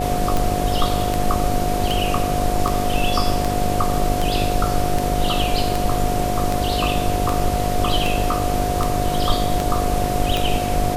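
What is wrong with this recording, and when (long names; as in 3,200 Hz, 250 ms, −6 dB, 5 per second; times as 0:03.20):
mains buzz 50 Hz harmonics 13 −25 dBFS
scratch tick 78 rpm
whistle 720 Hz −23 dBFS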